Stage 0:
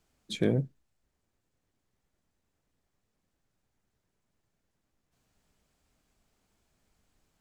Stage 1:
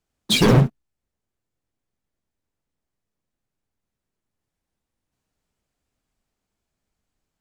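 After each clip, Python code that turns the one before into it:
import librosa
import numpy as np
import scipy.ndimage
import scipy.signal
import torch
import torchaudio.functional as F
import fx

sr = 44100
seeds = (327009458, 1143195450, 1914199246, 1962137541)

y = fx.leveller(x, sr, passes=5)
y = fx.echo_pitch(y, sr, ms=99, semitones=3, count=3, db_per_echo=-6.0)
y = y * 10.0 ** (3.0 / 20.0)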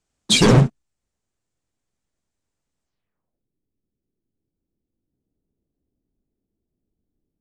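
y = fx.filter_sweep_lowpass(x, sr, from_hz=8000.0, to_hz=340.0, start_s=2.84, end_s=3.45, q=1.9)
y = y * 10.0 ** (1.5 / 20.0)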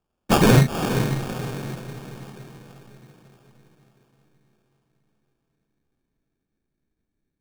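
y = fx.echo_diffused(x, sr, ms=464, feedback_pct=48, wet_db=-7.5)
y = fx.sample_hold(y, sr, seeds[0], rate_hz=2000.0, jitter_pct=0)
y = y * 10.0 ** (-1.5 / 20.0)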